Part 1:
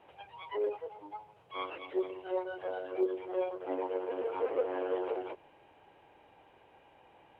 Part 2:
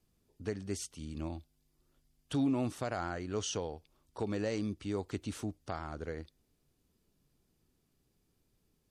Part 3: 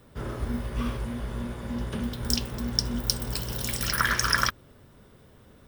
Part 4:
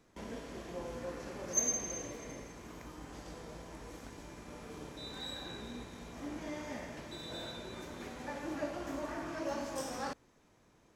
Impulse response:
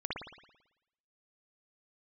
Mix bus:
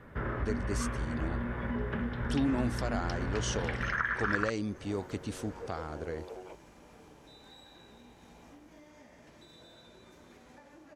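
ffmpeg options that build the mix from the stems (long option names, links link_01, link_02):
-filter_complex "[0:a]adelay=1200,volume=-3dB[link_01];[1:a]volume=1dB,asplit=2[link_02][link_03];[2:a]lowpass=frequency=1800:width_type=q:width=2.4,volume=2dB[link_04];[3:a]acompressor=threshold=-48dB:ratio=12,adelay=2300,volume=-4dB[link_05];[link_03]apad=whole_len=378947[link_06];[link_01][link_06]sidechaincompress=threshold=-41dB:ratio=8:attack=16:release=743[link_07];[link_07][link_04][link_05]amix=inputs=3:normalize=0,acompressor=threshold=-31dB:ratio=4,volume=0dB[link_08];[link_02][link_08]amix=inputs=2:normalize=0"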